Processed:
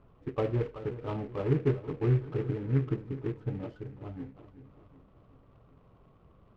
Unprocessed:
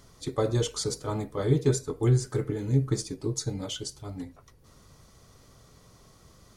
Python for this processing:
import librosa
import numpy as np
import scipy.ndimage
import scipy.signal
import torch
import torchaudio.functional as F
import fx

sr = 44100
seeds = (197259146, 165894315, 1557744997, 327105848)

y = scipy.signal.sosfilt(scipy.signal.butter(4, 1300.0, 'lowpass', fs=sr, output='sos'), x)
y = fx.echo_feedback(y, sr, ms=378, feedback_pct=54, wet_db=-14)
y = fx.noise_mod_delay(y, sr, seeds[0], noise_hz=1500.0, depth_ms=0.038)
y = F.gain(torch.from_numpy(y), -3.5).numpy()